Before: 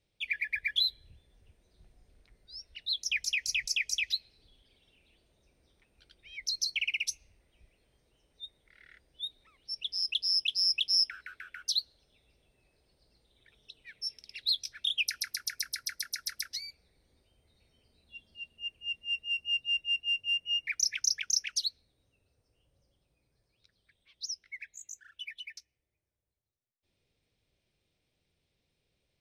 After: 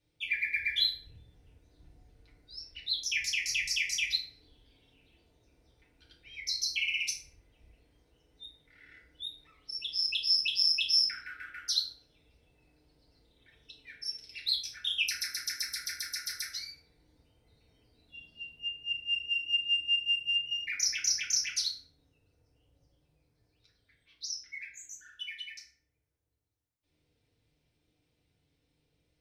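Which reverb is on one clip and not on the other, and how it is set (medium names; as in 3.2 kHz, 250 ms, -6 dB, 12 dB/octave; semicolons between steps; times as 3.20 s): FDN reverb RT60 0.65 s, low-frequency decay 1.5×, high-frequency decay 0.55×, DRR -4.5 dB; trim -4 dB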